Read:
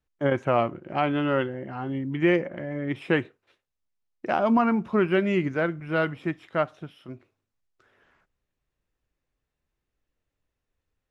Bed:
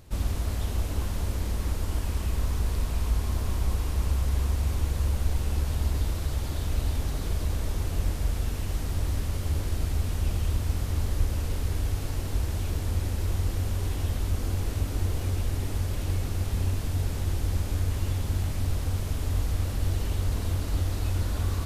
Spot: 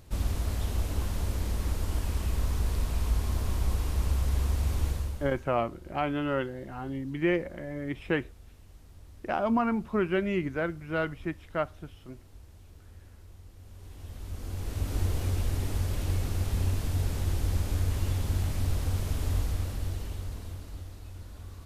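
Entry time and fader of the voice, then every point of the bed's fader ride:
5.00 s, -5.0 dB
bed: 4.89 s -1.5 dB
5.55 s -23 dB
13.54 s -23 dB
14.96 s -1 dB
19.32 s -1 dB
21.02 s -16.5 dB

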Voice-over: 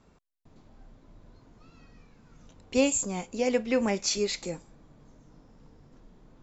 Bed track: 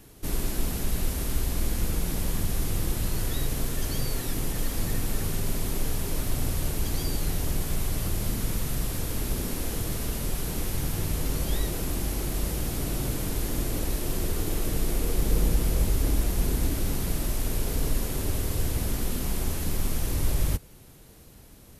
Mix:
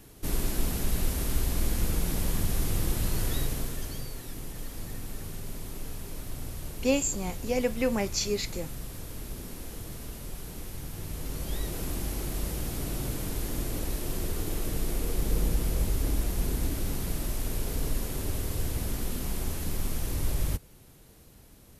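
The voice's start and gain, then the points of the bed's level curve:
4.10 s, -1.5 dB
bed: 3.36 s -0.5 dB
4.13 s -10 dB
10.90 s -10 dB
11.83 s -3.5 dB

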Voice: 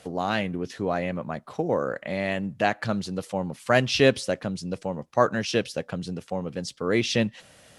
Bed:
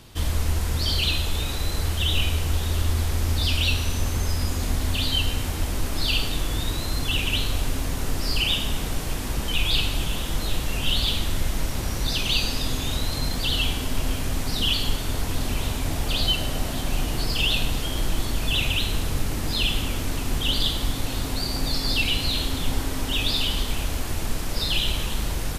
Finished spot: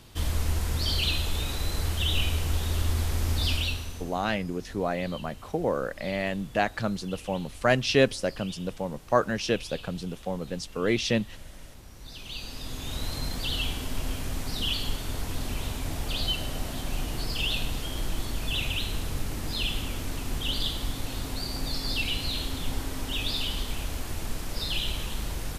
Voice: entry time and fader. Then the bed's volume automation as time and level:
3.95 s, -2.0 dB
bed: 3.52 s -3.5 dB
4.28 s -21 dB
11.93 s -21 dB
13.05 s -6 dB

